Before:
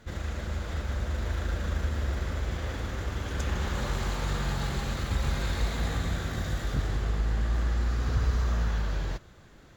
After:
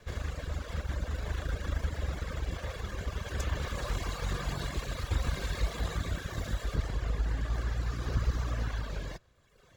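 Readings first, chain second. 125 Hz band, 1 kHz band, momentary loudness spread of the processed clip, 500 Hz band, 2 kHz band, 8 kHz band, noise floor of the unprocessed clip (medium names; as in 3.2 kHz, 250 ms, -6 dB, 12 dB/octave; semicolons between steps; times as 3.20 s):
-4.0 dB, -4.0 dB, 5 LU, -3.0 dB, -3.5 dB, no reading, -53 dBFS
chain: comb filter that takes the minimum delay 1.8 ms; reverb removal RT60 1.2 s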